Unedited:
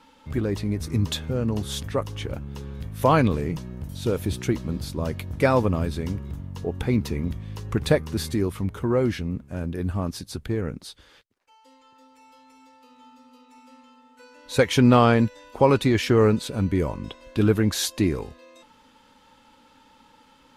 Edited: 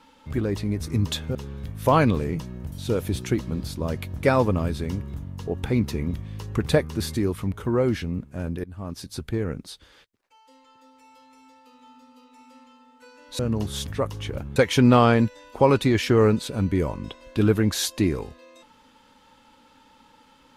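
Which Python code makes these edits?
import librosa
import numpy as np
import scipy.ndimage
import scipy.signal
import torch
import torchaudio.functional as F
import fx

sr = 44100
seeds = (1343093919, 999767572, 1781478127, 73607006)

y = fx.edit(x, sr, fx.move(start_s=1.35, length_s=1.17, to_s=14.56),
    fx.fade_in_from(start_s=9.81, length_s=0.51, floor_db=-23.0), tone=tone)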